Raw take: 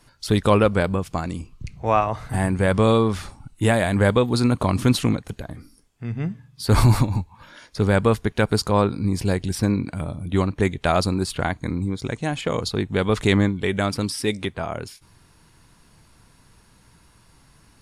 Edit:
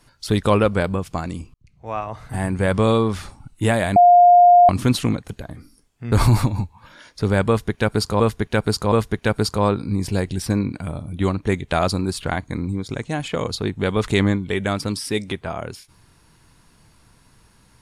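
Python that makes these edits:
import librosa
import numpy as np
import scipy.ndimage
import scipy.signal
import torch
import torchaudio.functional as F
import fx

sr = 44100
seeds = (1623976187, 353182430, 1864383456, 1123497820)

y = fx.edit(x, sr, fx.fade_in_span(start_s=1.54, length_s=1.09),
    fx.bleep(start_s=3.96, length_s=0.73, hz=707.0, db=-7.0),
    fx.cut(start_s=6.12, length_s=0.57),
    fx.repeat(start_s=8.05, length_s=0.72, count=3), tone=tone)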